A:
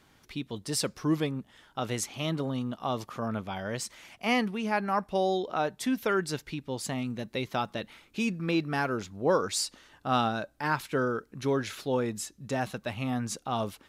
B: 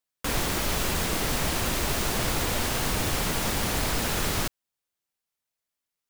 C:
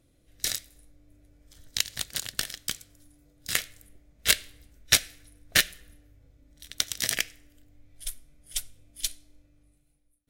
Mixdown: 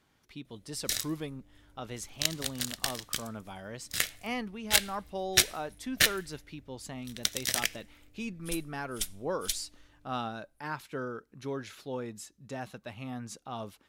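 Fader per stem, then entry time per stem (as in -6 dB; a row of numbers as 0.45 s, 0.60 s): -8.5 dB, mute, -2.5 dB; 0.00 s, mute, 0.45 s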